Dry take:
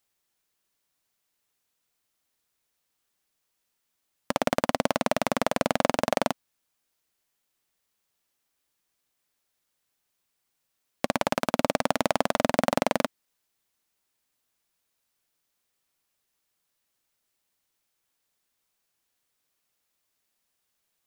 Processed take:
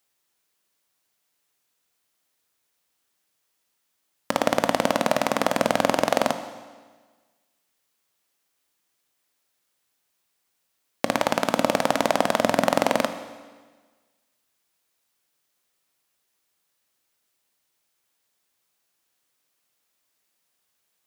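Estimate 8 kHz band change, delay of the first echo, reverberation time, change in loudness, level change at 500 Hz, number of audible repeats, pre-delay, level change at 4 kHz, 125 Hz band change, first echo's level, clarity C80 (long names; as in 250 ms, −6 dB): +4.0 dB, no echo audible, 1.4 s, +3.5 dB, +4.0 dB, no echo audible, 17 ms, +4.0 dB, +1.5 dB, no echo audible, 12.0 dB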